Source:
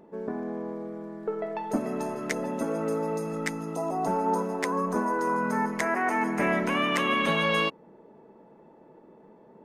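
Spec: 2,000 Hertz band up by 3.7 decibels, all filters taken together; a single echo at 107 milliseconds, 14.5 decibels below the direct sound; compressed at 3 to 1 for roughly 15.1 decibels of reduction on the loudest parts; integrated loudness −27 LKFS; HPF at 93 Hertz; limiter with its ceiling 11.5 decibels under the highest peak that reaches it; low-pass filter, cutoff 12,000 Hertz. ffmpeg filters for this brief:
ffmpeg -i in.wav -af "highpass=93,lowpass=12000,equalizer=frequency=2000:width_type=o:gain=4.5,acompressor=threshold=-43dB:ratio=3,alimiter=level_in=11.5dB:limit=-24dB:level=0:latency=1,volume=-11.5dB,aecho=1:1:107:0.188,volume=17.5dB" out.wav

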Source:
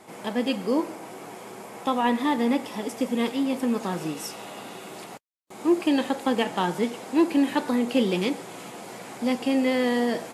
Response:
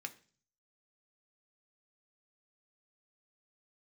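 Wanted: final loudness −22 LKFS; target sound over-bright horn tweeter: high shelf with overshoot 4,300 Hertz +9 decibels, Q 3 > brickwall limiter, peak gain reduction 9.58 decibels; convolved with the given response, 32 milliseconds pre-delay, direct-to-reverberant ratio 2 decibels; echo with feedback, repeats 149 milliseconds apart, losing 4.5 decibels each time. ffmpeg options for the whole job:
-filter_complex "[0:a]aecho=1:1:149|298|447|596|745|894|1043|1192|1341:0.596|0.357|0.214|0.129|0.0772|0.0463|0.0278|0.0167|0.01,asplit=2[link_01][link_02];[1:a]atrim=start_sample=2205,adelay=32[link_03];[link_02][link_03]afir=irnorm=-1:irlink=0,volume=0dB[link_04];[link_01][link_04]amix=inputs=2:normalize=0,highshelf=frequency=4300:width_type=q:width=3:gain=9,volume=3.5dB,alimiter=limit=-12dB:level=0:latency=1"

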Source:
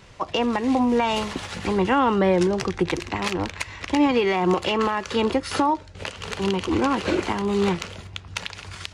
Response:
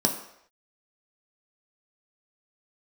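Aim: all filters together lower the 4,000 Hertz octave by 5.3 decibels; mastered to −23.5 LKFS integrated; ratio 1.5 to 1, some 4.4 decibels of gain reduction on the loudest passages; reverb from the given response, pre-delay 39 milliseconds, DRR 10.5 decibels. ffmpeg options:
-filter_complex "[0:a]equalizer=frequency=4000:width_type=o:gain=-8,acompressor=threshold=-28dB:ratio=1.5,asplit=2[link_01][link_02];[1:a]atrim=start_sample=2205,adelay=39[link_03];[link_02][link_03]afir=irnorm=-1:irlink=0,volume=-21.5dB[link_04];[link_01][link_04]amix=inputs=2:normalize=0,volume=2.5dB"

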